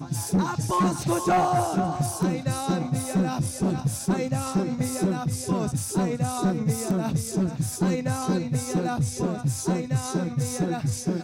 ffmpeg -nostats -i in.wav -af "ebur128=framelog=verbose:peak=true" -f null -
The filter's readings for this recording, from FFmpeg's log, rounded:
Integrated loudness:
  I:         -25.9 LUFS
  Threshold: -35.9 LUFS
Loudness range:
  LRA:         1.6 LU
  Threshold: -46.0 LUFS
  LRA low:   -26.5 LUFS
  LRA high:  -24.9 LUFS
True peak:
  Peak:      -15.7 dBFS